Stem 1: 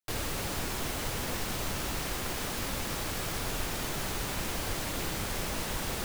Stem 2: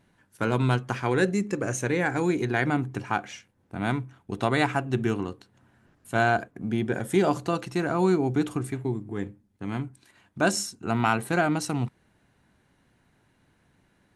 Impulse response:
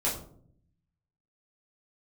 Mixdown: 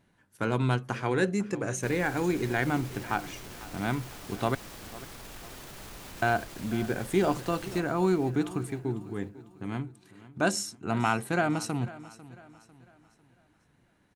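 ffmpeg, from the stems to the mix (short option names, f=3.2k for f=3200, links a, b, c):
-filter_complex "[0:a]alimiter=level_in=4dB:limit=-24dB:level=0:latency=1:release=13,volume=-4dB,adelay=1750,volume=-8.5dB,asplit=2[a][b];[b]volume=-9dB[c];[1:a]volume=-3dB,asplit=3[d][e][f];[d]atrim=end=4.55,asetpts=PTS-STARTPTS,afade=t=out:st=4.546:d=0.004:c=hsin[g];[e]atrim=start=4.55:end=6.22,asetpts=PTS-STARTPTS,volume=0[h];[f]atrim=start=6.22,asetpts=PTS-STARTPTS,afade=t=in:d=0.004:c=hsin[i];[g][h][i]concat=n=3:v=0:a=1,asplit=2[j][k];[k]volume=-18dB[l];[c][l]amix=inputs=2:normalize=0,aecho=0:1:498|996|1494|1992|2490|2988:1|0.4|0.16|0.064|0.0256|0.0102[m];[a][j][m]amix=inputs=3:normalize=0"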